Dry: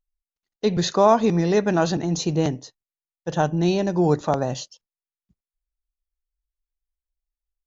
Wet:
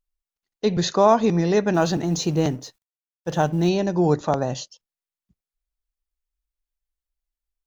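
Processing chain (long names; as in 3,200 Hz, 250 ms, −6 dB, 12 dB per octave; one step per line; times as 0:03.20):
0:01.74–0:03.69: mu-law and A-law mismatch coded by mu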